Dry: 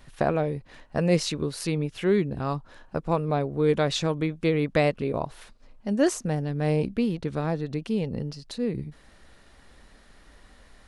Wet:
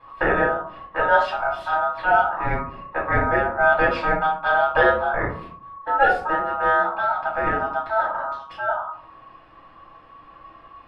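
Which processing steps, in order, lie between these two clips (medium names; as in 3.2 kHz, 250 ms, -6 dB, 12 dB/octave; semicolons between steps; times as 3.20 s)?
ring modulator 1.1 kHz; distance through air 430 m; reverberation RT60 0.50 s, pre-delay 3 ms, DRR -6.5 dB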